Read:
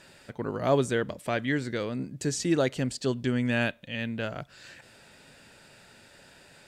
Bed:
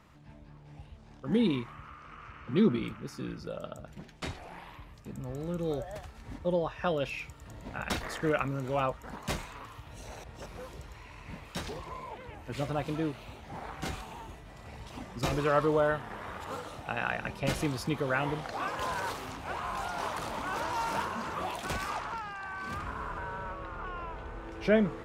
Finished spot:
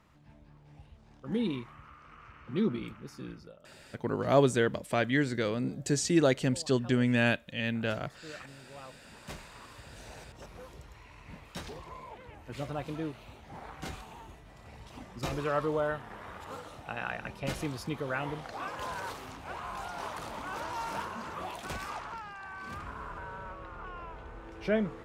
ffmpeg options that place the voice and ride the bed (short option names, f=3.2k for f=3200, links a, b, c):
-filter_complex "[0:a]adelay=3650,volume=0.5dB[a];[1:a]volume=10dB,afade=t=out:st=3.31:d=0.26:silence=0.199526,afade=t=in:st=9.01:d=0.83:silence=0.188365[b];[a][b]amix=inputs=2:normalize=0"